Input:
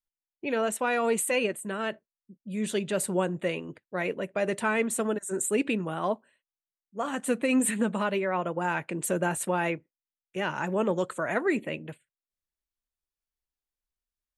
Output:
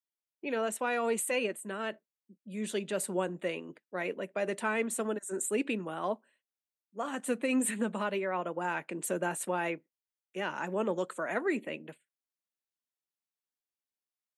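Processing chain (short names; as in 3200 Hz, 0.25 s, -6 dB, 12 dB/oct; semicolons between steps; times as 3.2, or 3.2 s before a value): HPF 190 Hz 24 dB/oct; gain -4.5 dB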